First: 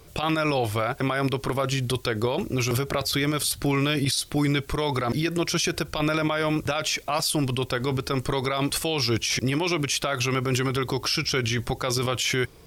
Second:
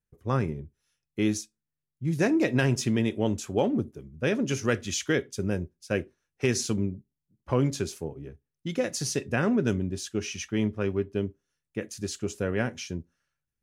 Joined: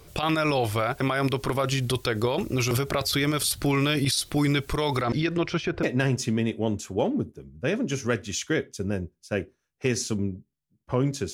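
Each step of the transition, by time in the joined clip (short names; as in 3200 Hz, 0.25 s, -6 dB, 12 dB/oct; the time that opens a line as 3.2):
first
5.02–5.83 LPF 6500 Hz -> 1400 Hz
5.83 switch to second from 2.42 s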